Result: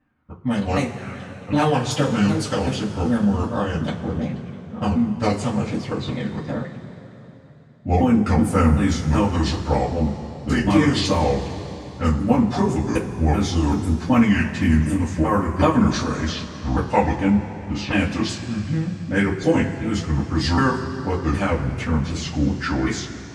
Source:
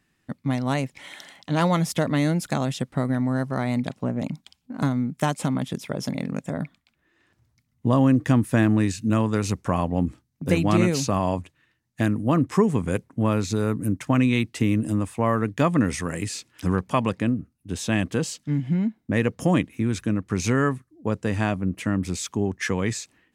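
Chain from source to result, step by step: sawtooth pitch modulation -7.5 st, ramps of 381 ms; level-controlled noise filter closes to 1.3 kHz, open at -20 dBFS; two-slope reverb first 0.2 s, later 3.5 s, from -21 dB, DRR -8.5 dB; trim -3 dB

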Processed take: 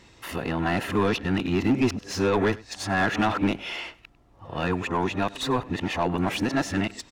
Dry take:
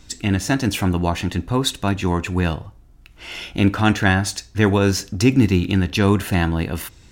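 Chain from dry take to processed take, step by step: reverse the whole clip; band-stop 1.5 kHz, Q 8.4; overdrive pedal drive 21 dB, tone 1.4 kHz, clips at -3 dBFS; on a send: delay 99 ms -21.5 dB; on the sum: trim -9 dB

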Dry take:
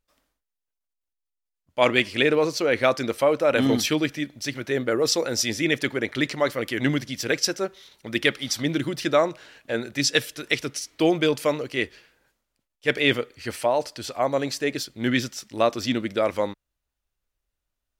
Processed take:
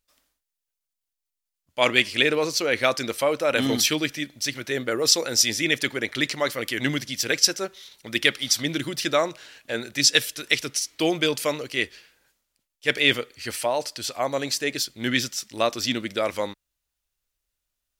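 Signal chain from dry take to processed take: treble shelf 2.1 kHz +10.5 dB; trim -3.5 dB

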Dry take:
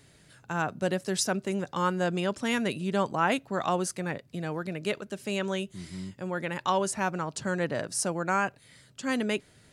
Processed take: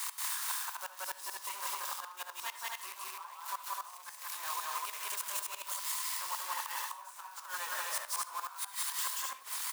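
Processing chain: zero-crossing glitches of -19 dBFS; in parallel at +2.5 dB: peak limiter -23 dBFS, peak gain reduction 10.5 dB; on the sum: chorus voices 4, 1.2 Hz, delay 25 ms, depth 3 ms; integer overflow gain 14 dB; ladder high-pass 960 Hz, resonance 80%; inverted gate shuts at -25 dBFS, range -24 dB; loudspeakers at several distances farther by 62 m 0 dB, 87 m -2 dB; on a send at -14 dB: reverberation RT60 0.45 s, pre-delay 54 ms; on the sum: three bands compressed up and down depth 40%

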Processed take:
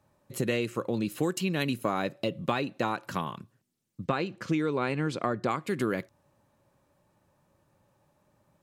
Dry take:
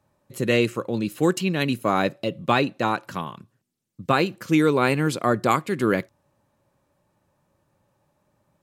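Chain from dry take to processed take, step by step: 1.26–1.72 s: treble shelf 8.1 kHz +5 dB; compression 6:1, threshold -25 dBFS, peak gain reduction 10.5 dB; 4.05–5.62 s: distance through air 76 m

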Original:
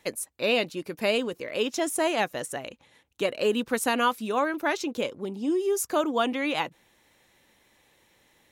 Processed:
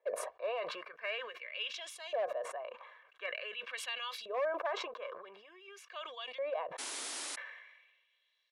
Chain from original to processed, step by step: LFO band-pass saw up 0.47 Hz 540–4700 Hz; comb 1.8 ms, depth 81%; hard clipper -23 dBFS, distortion -17 dB; three-band isolator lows -23 dB, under 410 Hz, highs -18 dB, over 3.5 kHz; painted sound noise, 6.78–7.36 s, 240–11000 Hz -37 dBFS; decay stretcher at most 48 dB/s; trim -4.5 dB

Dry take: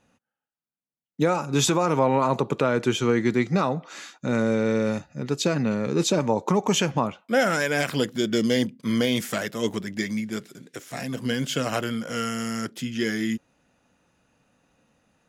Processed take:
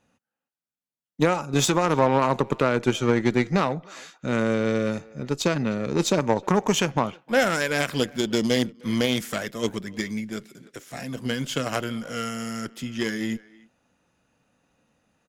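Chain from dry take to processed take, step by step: speakerphone echo 310 ms, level -20 dB; Chebyshev shaper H 3 -16 dB, 8 -34 dB, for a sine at -10 dBFS; trim +3 dB

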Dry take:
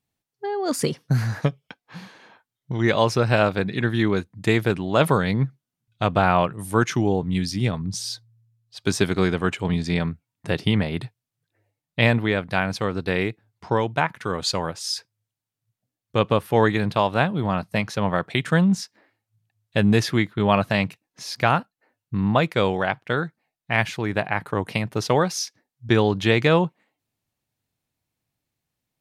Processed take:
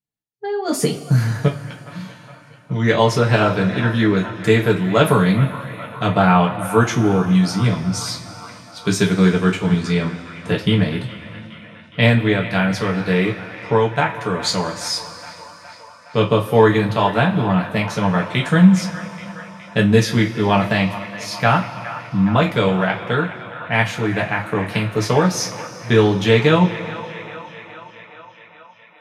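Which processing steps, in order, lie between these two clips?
feedback echo behind a band-pass 416 ms, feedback 71%, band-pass 1.4 kHz, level -12 dB; two-slope reverb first 0.22 s, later 3.7 s, from -22 dB, DRR -1 dB; spectral noise reduction 15 dB

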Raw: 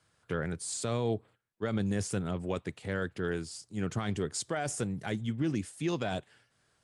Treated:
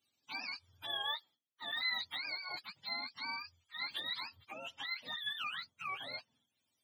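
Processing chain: spectrum inverted on a logarithmic axis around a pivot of 630 Hz; differentiator; trim +7.5 dB

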